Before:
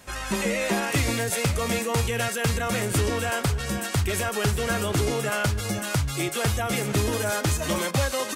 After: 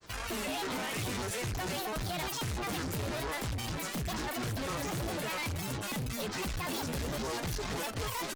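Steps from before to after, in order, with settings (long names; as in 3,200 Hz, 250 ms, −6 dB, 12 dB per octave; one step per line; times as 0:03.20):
granular cloud, spray 21 ms, pitch spread up and down by 12 semitones
tube saturation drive 33 dB, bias 0.55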